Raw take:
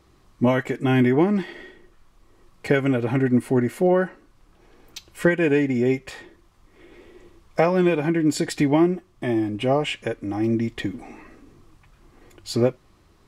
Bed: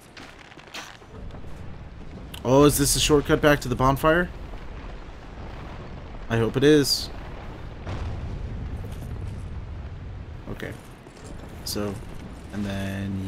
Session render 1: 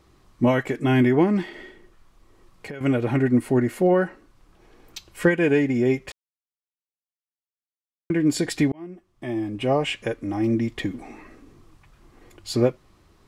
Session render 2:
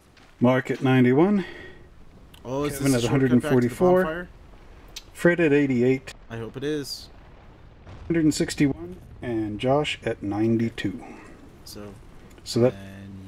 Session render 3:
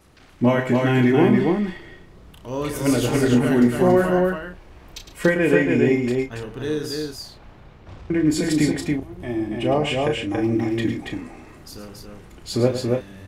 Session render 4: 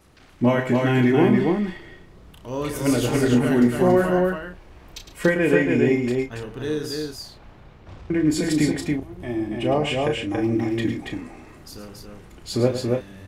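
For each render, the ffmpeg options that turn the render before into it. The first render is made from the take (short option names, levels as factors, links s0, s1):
-filter_complex "[0:a]asettb=1/sr,asplit=3[s0][s1][s2];[s0]atrim=end=1.484[s3];[s1]atrim=start=1.48:end=2.81,asetpts=PTS-STARTPTS,afade=t=in:d=0.004:c=qsin,afade=t=out:st=1.326:d=0.004:c=qsin,acompressor=threshold=0.0178:ratio=4:attack=3.2:release=140:knee=1:detection=peak[s4];[s2]atrim=start=2.806[s5];[s3][s4]acrossfade=d=0.004:c1=hsin:c2=qsin[s6];[s6][s5]acrossfade=d=0.004:c1=qsin:c2=hsin,asplit=4[s7][s8][s9][s10];[s7]atrim=end=6.12,asetpts=PTS-STARTPTS,afade=t=out:st=6.116:d=0.004:c=hsin[s11];[s8]atrim=start=6.12:end=8.1,asetpts=PTS-STARTPTS,volume=0[s12];[s9]atrim=start=8.1:end=8.72,asetpts=PTS-STARTPTS,afade=t=in:d=0.004:c=hsin,afade=t=out:st=0.616:d=0.004:c=hsin[s13];[s10]atrim=start=8.72,asetpts=PTS-STARTPTS,afade=t=in:d=1.1[s14];[s11][s12][s13][s14]concat=n=4:v=0:a=1"
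-filter_complex "[1:a]volume=0.282[s0];[0:a][s0]amix=inputs=2:normalize=0"
-filter_complex "[0:a]asplit=2[s0][s1];[s1]adelay=33,volume=0.422[s2];[s0][s2]amix=inputs=2:normalize=0,aecho=1:1:107.9|279.9:0.316|0.708"
-af "volume=0.891"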